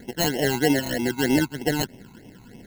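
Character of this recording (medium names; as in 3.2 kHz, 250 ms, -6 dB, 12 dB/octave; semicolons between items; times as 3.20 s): aliases and images of a low sample rate 1.2 kHz, jitter 0%; phasing stages 12, 3.2 Hz, lowest notch 540–1400 Hz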